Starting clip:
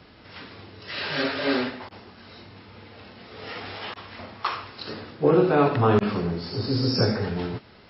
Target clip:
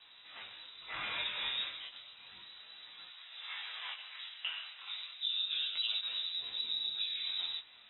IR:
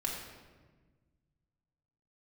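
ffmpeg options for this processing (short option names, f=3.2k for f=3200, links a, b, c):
-filter_complex "[0:a]acompressor=threshold=-27dB:ratio=6,lowpass=f=3.4k:t=q:w=0.5098,lowpass=f=3.4k:t=q:w=0.6013,lowpass=f=3.4k:t=q:w=0.9,lowpass=f=3.4k:t=q:w=2.563,afreqshift=-4000,flanger=delay=9.4:depth=1.1:regen=-35:speed=1.2:shape=triangular,afreqshift=15,asplit=3[a][b][c];[a]afade=t=out:st=3.08:d=0.02[d];[b]highpass=910,afade=t=in:st=3.08:d=0.02,afade=t=out:st=5.33:d=0.02[e];[c]afade=t=in:st=5.33:d=0.02[f];[d][e][f]amix=inputs=3:normalize=0,flanger=delay=16.5:depth=7.7:speed=0.32"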